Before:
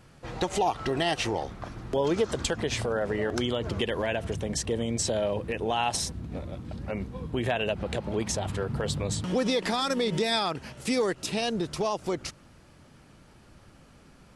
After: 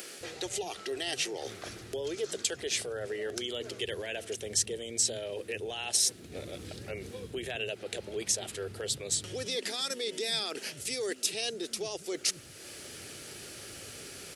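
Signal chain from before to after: reverse; compressor 6:1, threshold -38 dBFS, peak gain reduction 16 dB; reverse; tilt +4 dB/oct; upward compressor, threshold -41 dBFS; fifteen-band EQ 100 Hz +7 dB, 400 Hz +10 dB, 1000 Hz -12 dB; bands offset in time highs, lows 0.21 s, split 210 Hz; gain +4 dB

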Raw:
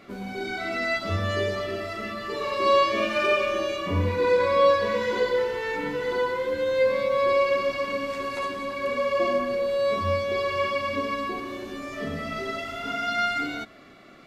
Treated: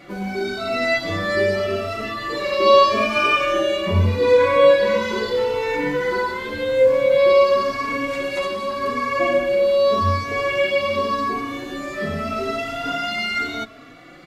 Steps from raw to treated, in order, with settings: endless flanger 3.6 ms +0.85 Hz; gain +9 dB

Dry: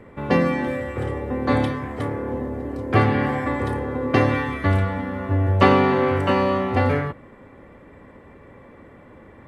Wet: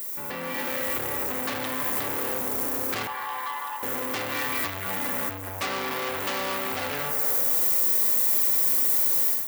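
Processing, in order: added noise violet -39 dBFS; high shelf 2900 Hz -8 dB; tape echo 80 ms, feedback 84%, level -16 dB, low-pass 3100 Hz; compressor 2.5:1, threshold -28 dBFS, peak gain reduction 12 dB; 3.07–3.83 ladder high-pass 890 Hz, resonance 75%; AGC gain up to 13.5 dB; soft clip -22.5 dBFS, distortion -6 dB; tilt +4 dB/oct; on a send at -16 dB: reverb RT60 6.5 s, pre-delay 45 ms; on the sum: gain -3.5 dB

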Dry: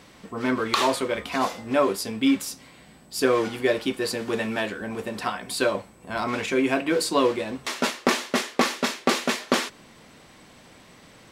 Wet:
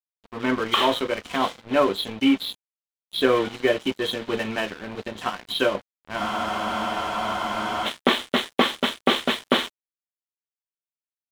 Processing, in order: nonlinear frequency compression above 2900 Hz 4:1; crossover distortion -35.5 dBFS; spectral freeze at 6.21, 1.65 s; gain +2.5 dB

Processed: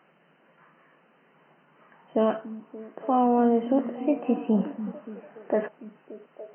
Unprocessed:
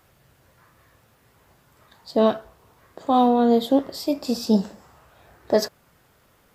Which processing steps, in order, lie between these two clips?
FFT band-pass 140–3100 Hz; limiter -13.5 dBFS, peak gain reduction 7.5 dB; delay with a stepping band-pass 0.288 s, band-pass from 200 Hz, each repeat 0.7 oct, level -10 dB

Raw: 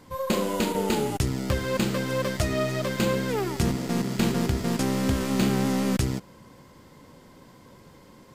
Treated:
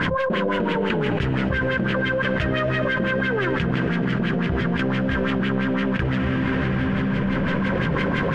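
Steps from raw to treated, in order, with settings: thirty-one-band EQ 160 Hz +10 dB, 800 Hz -11 dB, 1600 Hz +12 dB, 3150 Hz +9 dB; in parallel at -11 dB: soft clip -27.5 dBFS, distortion -7 dB; on the sum: companded quantiser 4-bit; LFO low-pass sine 5.9 Hz 580–2600 Hz; on a send at -11 dB: reverb RT60 5.4 s, pre-delay 0.198 s; on the sum: fast leveller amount 100%; gain -6 dB

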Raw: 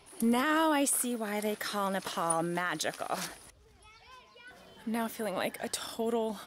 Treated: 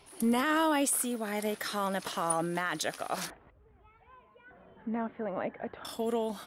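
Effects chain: 3.3–5.85 Gaussian blur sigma 4.4 samples

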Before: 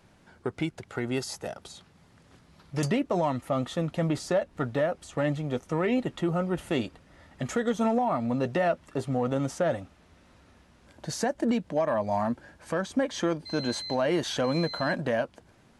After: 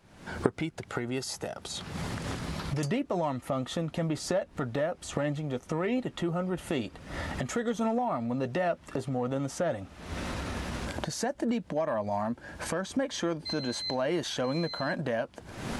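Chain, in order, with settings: recorder AGC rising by 64 dB/s; gain -3.5 dB

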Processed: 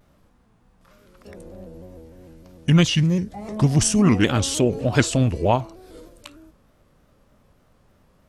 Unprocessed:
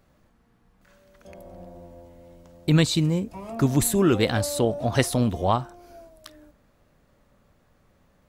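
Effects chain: formant shift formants -4 st; shaped vibrato square 3.3 Hz, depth 100 cents; gain +3.5 dB

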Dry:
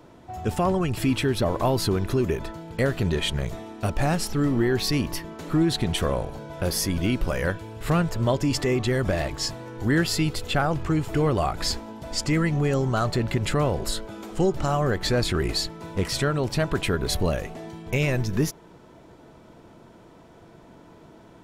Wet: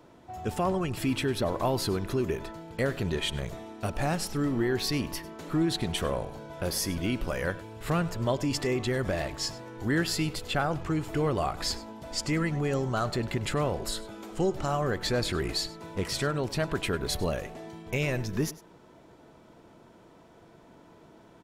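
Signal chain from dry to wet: low shelf 160 Hz -4.5 dB; on a send: echo 0.1 s -18.5 dB; on the sum: gain -4 dB

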